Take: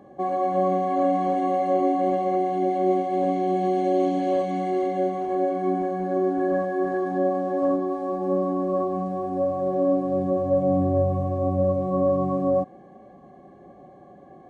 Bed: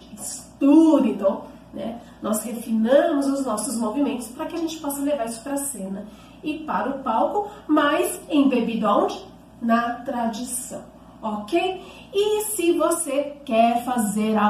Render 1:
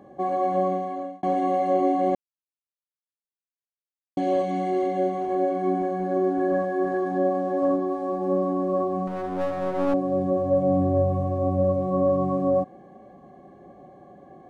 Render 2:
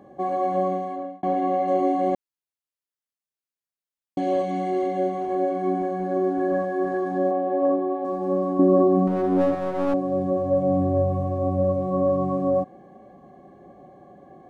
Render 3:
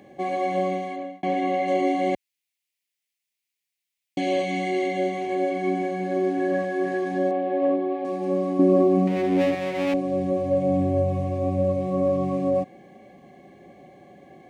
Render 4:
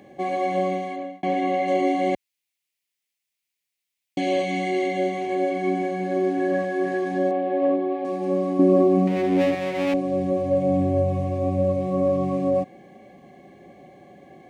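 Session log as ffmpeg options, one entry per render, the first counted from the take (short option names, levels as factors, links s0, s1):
-filter_complex "[0:a]asettb=1/sr,asplit=3[s0][s1][s2];[s0]atrim=end=9.074[s3];[s1]atrim=start=9.07:end=9.94,asetpts=PTS-STARTPTS,afade=t=in:d=0.004:c=qsin,afade=t=out:st=0.866:d=0.004:c=qsin,aeval=exprs='clip(val(0),-1,0.0316)':c=same[s4];[s2]atrim=start=9.936[s5];[s3][s4]acrossfade=d=0.004:c1=hsin:c2=qsin[s6];[s6][s5]acrossfade=d=0.004:c1=qsin:c2=hsin,asplit=4[s7][s8][s9][s10];[s7]atrim=end=1.23,asetpts=PTS-STARTPTS,afade=t=out:st=0.53:d=0.7[s11];[s8]atrim=start=1.23:end=2.15,asetpts=PTS-STARTPTS,afade=t=in:d=0.004:c=hsin,afade=t=out:st=0.916:d=0.004:c=hsin[s12];[s9]atrim=start=2.15:end=4.17,asetpts=PTS-STARTPTS,volume=0[s13];[s10]atrim=start=4.17,asetpts=PTS-STARTPTS,afade=t=in:d=0.004:c=hsin[s14];[s11][s12][s13][s14]concat=n=4:v=0:a=1"
-filter_complex "[0:a]asettb=1/sr,asplit=3[s0][s1][s2];[s0]atrim=end=0.964[s3];[s1]atrim=start=0.96:end=1.68,asetpts=PTS-STARTPTS,afade=t=in:d=0.004:c=qsin,afade=t=out:st=0.716:d=0.004:c=qsin,aemphasis=mode=reproduction:type=50fm[s4];[s2]atrim=start=1.676[s5];[s3][s4]acrossfade=d=0.004:c1=hsin:c2=qsin[s6];[s6][s5]acrossfade=d=0.004:c1=qsin:c2=hsin,asettb=1/sr,asplit=3[s7][s8][s9];[s7]atrim=end=7.314[s10];[s8]atrim=start=7.31:end=8.05,asetpts=PTS-STARTPTS,afade=t=in:d=0.004:c=qsin,afade=t=out:st=0.736:d=0.004:c=qsin,highpass=100,equalizer=f=170:t=q:w=4:g=-9,equalizer=f=460:t=q:w=4:g=6,equalizer=f=740:t=q:w=4:g=3,equalizer=f=1400:t=q:w=4:g=-7,lowpass=f=3300:w=0.5412,lowpass=f=3300:w=1.3066[s11];[s9]atrim=start=8.046[s12];[s10][s11]acrossfade=d=0.004:c1=hsin:c2=qsin[s13];[s13][s12]acrossfade=d=0.004:c1=qsin:c2=hsin,asettb=1/sr,asplit=3[s14][s15][s16];[s14]atrim=end=8.594[s17];[s15]atrim=start=8.59:end=9.55,asetpts=PTS-STARTPTS,afade=t=in:d=0.004:c=qsin,afade=t=out:st=0.956:d=0.004:c=qsin,equalizer=f=280:w=0.78:g=12[s18];[s16]atrim=start=9.546[s19];[s17][s18]acrossfade=d=0.004:c1=hsin:c2=qsin[s20];[s20][s19]acrossfade=d=0.004:c1=qsin:c2=hsin"
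-af "highpass=60,highshelf=f=1700:t=q:w=3:g=8.5"
-af "volume=1.12"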